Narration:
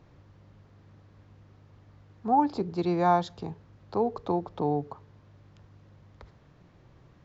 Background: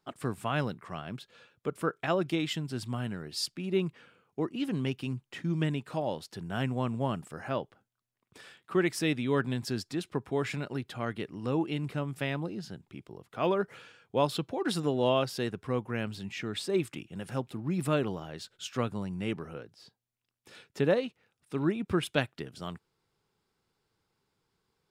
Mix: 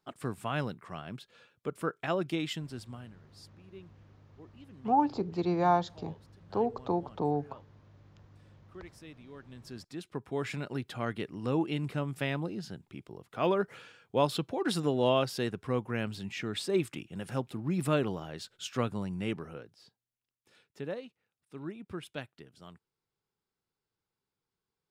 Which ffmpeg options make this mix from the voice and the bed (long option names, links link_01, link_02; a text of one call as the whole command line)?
ffmpeg -i stem1.wav -i stem2.wav -filter_complex "[0:a]adelay=2600,volume=-2.5dB[link_01];[1:a]volume=19dB,afade=type=out:start_time=2.48:duration=0.69:silence=0.112202,afade=type=in:start_time=9.46:duration=1.42:silence=0.0841395,afade=type=out:start_time=19.14:duration=1.33:silence=0.251189[link_02];[link_01][link_02]amix=inputs=2:normalize=0" out.wav